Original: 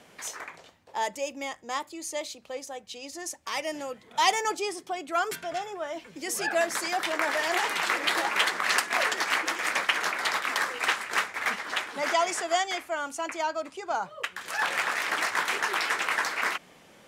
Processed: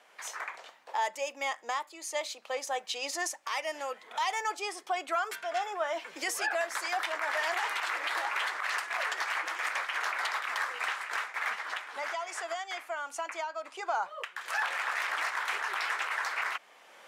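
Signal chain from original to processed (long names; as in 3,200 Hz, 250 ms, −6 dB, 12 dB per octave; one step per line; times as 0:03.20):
camcorder AGC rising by 14 dB per second
high-pass filter 860 Hz 12 dB per octave
high-shelf EQ 2,400 Hz −10 dB
0:11.62–0:13.87: downward compressor 5 to 1, threshold −33 dBFS, peak gain reduction 8.5 dB
brickwall limiter −21 dBFS, peak gain reduction 10 dB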